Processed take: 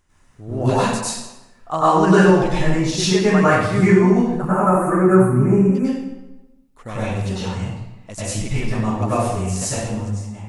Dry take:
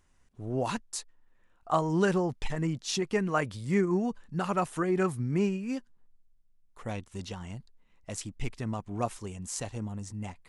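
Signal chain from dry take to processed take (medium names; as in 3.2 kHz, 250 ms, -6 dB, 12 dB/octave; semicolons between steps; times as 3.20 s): fade out at the end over 0.80 s; 4.35–5.75 s: Butterworth band-stop 3.9 kHz, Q 0.51; reverberation RT60 1.0 s, pre-delay 91 ms, DRR -11.5 dB; trim +2.5 dB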